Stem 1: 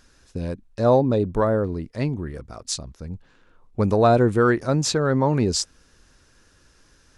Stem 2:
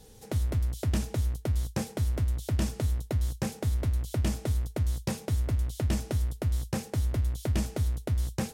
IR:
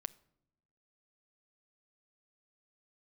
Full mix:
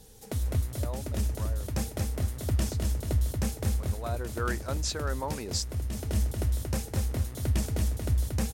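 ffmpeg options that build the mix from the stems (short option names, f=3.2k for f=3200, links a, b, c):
-filter_complex "[0:a]highpass=f=910:p=1,volume=-7.5dB,afade=t=in:st=3.98:d=0.63:silence=0.266073,asplit=2[a][b];[1:a]highshelf=f=6.6k:g=6.5,aphaser=in_gain=1:out_gain=1:delay=4.7:decay=0.25:speed=1.6:type=triangular,volume=-2dB,asplit=2[c][d];[d]volume=-4.5dB[e];[b]apad=whole_len=376370[f];[c][f]sidechaincompress=threshold=-45dB:ratio=8:attack=6.7:release=432[g];[e]aecho=0:1:231|462|693|924|1155:1|0.35|0.122|0.0429|0.015[h];[a][g][h]amix=inputs=3:normalize=0"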